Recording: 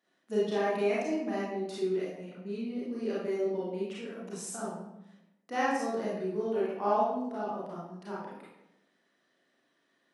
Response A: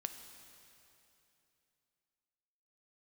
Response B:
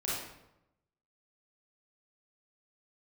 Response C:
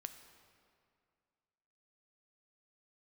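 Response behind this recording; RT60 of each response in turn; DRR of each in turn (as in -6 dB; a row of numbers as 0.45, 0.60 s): B; 2.9, 0.90, 2.2 s; 7.0, -8.0, 8.0 dB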